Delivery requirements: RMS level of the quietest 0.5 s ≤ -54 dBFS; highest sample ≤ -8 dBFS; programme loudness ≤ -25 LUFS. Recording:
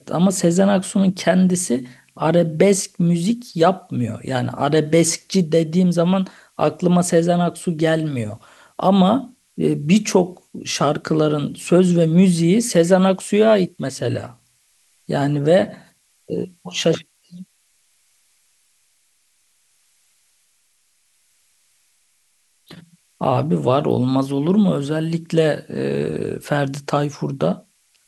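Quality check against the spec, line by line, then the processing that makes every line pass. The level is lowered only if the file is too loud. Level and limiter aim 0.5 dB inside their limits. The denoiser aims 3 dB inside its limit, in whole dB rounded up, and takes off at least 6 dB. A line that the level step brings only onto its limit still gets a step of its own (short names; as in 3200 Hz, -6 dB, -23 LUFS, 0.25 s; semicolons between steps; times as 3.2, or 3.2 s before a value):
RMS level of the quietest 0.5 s -63 dBFS: OK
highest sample -1.5 dBFS: fail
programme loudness -18.5 LUFS: fail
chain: gain -7 dB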